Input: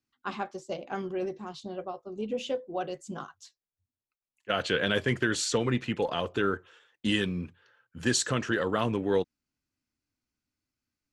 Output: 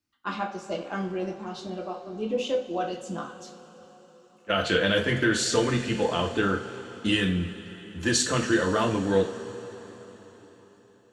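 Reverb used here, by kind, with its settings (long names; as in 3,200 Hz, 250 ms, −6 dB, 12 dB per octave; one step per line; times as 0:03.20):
coupled-rooms reverb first 0.37 s, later 4.5 s, from −18 dB, DRR 0.5 dB
level +1 dB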